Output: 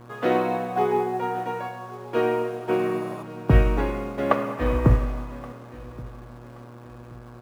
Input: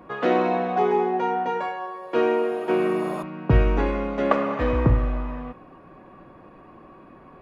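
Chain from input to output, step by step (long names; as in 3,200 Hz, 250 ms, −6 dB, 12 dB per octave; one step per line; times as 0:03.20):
hum with harmonics 120 Hz, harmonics 14, −40 dBFS −6 dB per octave
repeating echo 1,125 ms, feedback 34%, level −15.5 dB
in parallel at −12 dB: bit reduction 6 bits
on the sum: expander for the loud parts 1.5 to 1, over −27 dBFS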